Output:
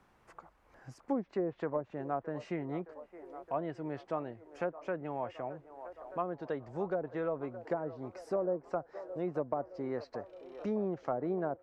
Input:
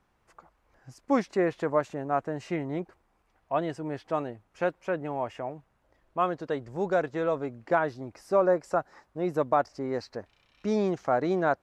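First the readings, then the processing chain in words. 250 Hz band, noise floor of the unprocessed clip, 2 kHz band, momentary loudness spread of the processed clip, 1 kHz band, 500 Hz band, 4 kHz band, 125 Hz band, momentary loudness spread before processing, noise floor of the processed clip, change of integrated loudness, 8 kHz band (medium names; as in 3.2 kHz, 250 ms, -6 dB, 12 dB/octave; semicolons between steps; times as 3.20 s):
-6.5 dB, -71 dBFS, -12.5 dB, 14 LU, -10.0 dB, -7.5 dB, under -10 dB, -6.5 dB, 12 LU, -67 dBFS, -8.5 dB, no reading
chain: low-pass that closes with the level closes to 600 Hz, closed at -20.5 dBFS; feedback echo behind a band-pass 617 ms, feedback 61%, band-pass 800 Hz, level -15 dB; three bands compressed up and down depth 40%; trim -7 dB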